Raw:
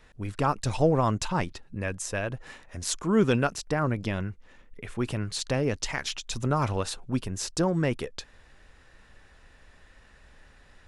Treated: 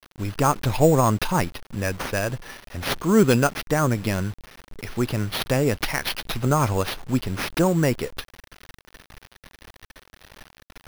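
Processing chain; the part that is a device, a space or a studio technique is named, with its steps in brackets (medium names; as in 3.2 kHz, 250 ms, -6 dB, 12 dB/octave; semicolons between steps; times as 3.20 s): early 8-bit sampler (sample-rate reducer 7.6 kHz, jitter 0%; bit crusher 8-bit); trim +5.5 dB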